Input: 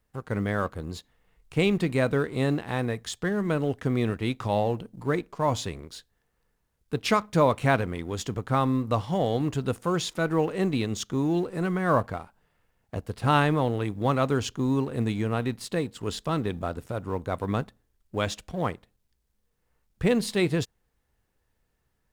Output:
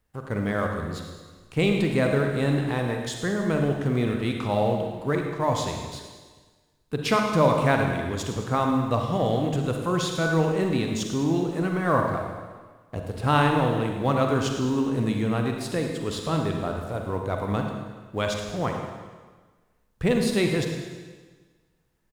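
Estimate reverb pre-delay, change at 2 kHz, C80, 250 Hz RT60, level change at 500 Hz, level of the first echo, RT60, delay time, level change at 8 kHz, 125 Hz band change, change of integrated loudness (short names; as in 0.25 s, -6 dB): 38 ms, +2.5 dB, 5.0 dB, 1.5 s, +2.0 dB, -12.5 dB, 1.4 s, 0.106 s, +2.0 dB, +2.0 dB, +2.0 dB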